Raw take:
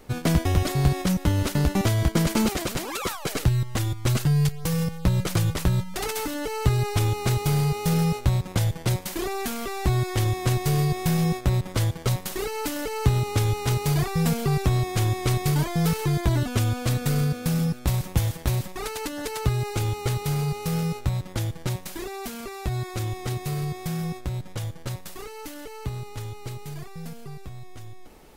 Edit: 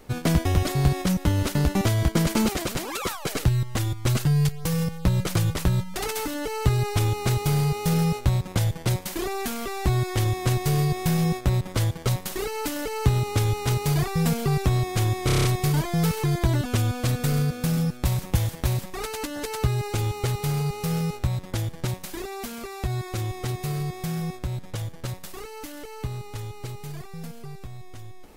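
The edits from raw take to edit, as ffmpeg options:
-filter_complex "[0:a]asplit=7[a][b][c][d][e][f][g];[a]atrim=end=15.292[h];[b]atrim=start=15.258:end=15.292[i];[c]atrim=start=15.258:end=15.292[j];[d]atrim=start=15.258:end=15.292[k];[e]atrim=start=15.258:end=15.292[l];[f]atrim=start=15.258:end=15.292[m];[g]atrim=start=15.258[n];[h][i]acrossfade=d=0.004:c1=hsin:c2=hsin[o];[o][j]acrossfade=d=0.004:c1=hsin:c2=hsin[p];[p][k]acrossfade=d=0.004:c1=hsin:c2=hsin[q];[q][l]acrossfade=d=0.004:c1=hsin:c2=hsin[r];[r][m]acrossfade=d=0.004:c1=hsin:c2=hsin[s];[s][n]acrossfade=d=0.004:c1=hsin:c2=hsin"

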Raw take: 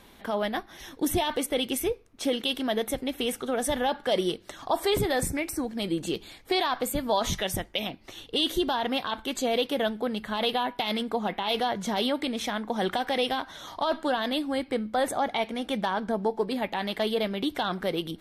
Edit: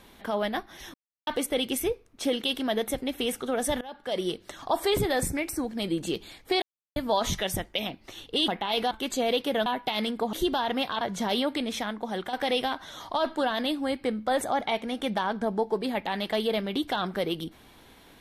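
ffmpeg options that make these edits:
-filter_complex "[0:a]asplit=12[a][b][c][d][e][f][g][h][i][j][k][l];[a]atrim=end=0.94,asetpts=PTS-STARTPTS,afade=t=out:st=0.936:d=0.004:c=hsin[m];[b]atrim=start=0.94:end=1.27,asetpts=PTS-STARTPTS,volume=0[n];[c]atrim=start=1.27:end=3.81,asetpts=PTS-STARTPTS,afade=t=in:d=0.004:c=hsin,afade=t=out:st=2.536:d=0.004:c=hsin:silence=0.0749894[o];[d]atrim=start=3.81:end=6.62,asetpts=PTS-STARTPTS,afade=t=in:d=0.6:silence=0.0749894,afade=t=out:st=2.806:d=0.004:c=hsin[p];[e]atrim=start=6.62:end=6.96,asetpts=PTS-STARTPTS,volume=0[q];[f]atrim=start=6.96:end=8.482,asetpts=PTS-STARTPTS,afade=t=in:d=0.004:c=hsin[r];[g]atrim=start=11.248:end=11.682[s];[h]atrim=start=9.158:end=9.912[t];[i]atrim=start=10.578:end=11.252[u];[j]atrim=start=8.478:end=9.162[v];[k]atrim=start=11.678:end=13,asetpts=PTS-STARTPTS,afade=t=out:st=0.682:d=0.64:silence=0.421697[w];[l]atrim=start=13,asetpts=PTS-STARTPTS,afade=t=in:d=0.004:c=hsin:silence=0.421697[x];[m][n][o][p][q][r]concat=n=6:v=0:a=1[y];[y][s]acrossfade=d=0.004:c1=hsin:c2=hsin[z];[z][t]acrossfade=d=0.004:c1=hsin:c2=hsin[aa];[aa][u]acrossfade=d=0.004:c1=hsin:c2=hsin[ab];[ab][v]acrossfade=d=0.004:c1=hsin:c2=hsin[ac];[w][x]concat=n=2:v=0:a=1[ad];[ac][ad]acrossfade=d=0.004:c1=hsin:c2=hsin"

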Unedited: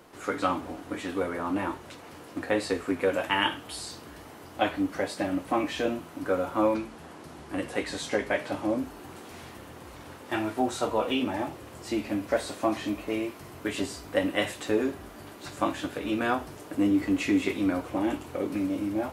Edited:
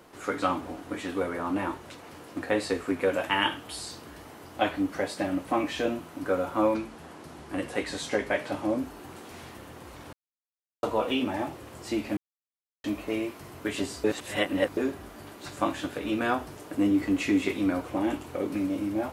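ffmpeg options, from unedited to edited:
-filter_complex "[0:a]asplit=7[a][b][c][d][e][f][g];[a]atrim=end=10.13,asetpts=PTS-STARTPTS,afade=t=out:st=10.126:d=0.004:c=hsin[h];[b]atrim=start=10.13:end=10.83,asetpts=PTS-STARTPTS,volume=0[i];[c]atrim=start=10.83:end=12.17,asetpts=PTS-STARTPTS,afade=t=in:d=0.004:c=hsin,afade=t=out:st=1.336:d=0.004:c=hsin[j];[d]atrim=start=12.17:end=12.84,asetpts=PTS-STARTPTS,volume=0[k];[e]atrim=start=12.84:end=14.042,asetpts=PTS-STARTPTS,afade=t=in:d=0.004:c=hsin[l];[f]atrim=start=14.038:end=14.772,asetpts=PTS-STARTPTS,areverse[m];[g]atrim=start=14.768[n];[h][i][j][k][l]concat=n=5:v=0:a=1[o];[o][m]acrossfade=d=0.004:c1=hsin:c2=hsin[p];[p][n]acrossfade=d=0.004:c1=hsin:c2=hsin"

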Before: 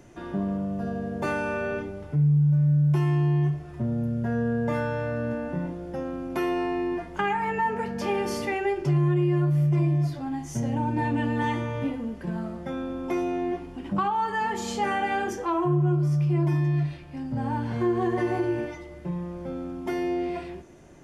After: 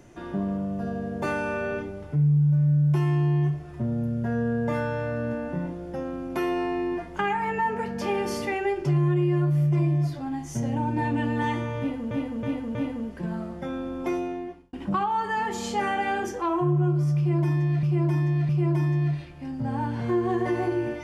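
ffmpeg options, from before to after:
-filter_complex "[0:a]asplit=7[a][b][c][d][e][f][g];[a]atrim=end=12.112[h];[b]atrim=start=11.788:end=12.112[i];[c]atrim=start=11.788:end=12.112[j];[d]atrim=start=11.788:end=13.77,asetpts=PTS-STARTPTS,afade=t=out:st=1.352:d=0.63[k];[e]atrim=start=13.77:end=16.872,asetpts=PTS-STARTPTS,afade=t=in:d=0.004:c=hsin[l];[f]atrim=start=16.208:end=16.872[m];[g]atrim=start=16.208[n];[h][i]acrossfade=d=0.004:c1=hsin:c2=hsin[o];[o][j]acrossfade=d=0.004:c1=hsin:c2=hsin[p];[k][l]concat=n=2:v=0:a=1[q];[p][q]acrossfade=d=0.004:c1=hsin:c2=hsin[r];[r][m]acrossfade=d=0.004:c1=hsin:c2=hsin[s];[s][n]acrossfade=d=0.004:c1=hsin:c2=hsin"

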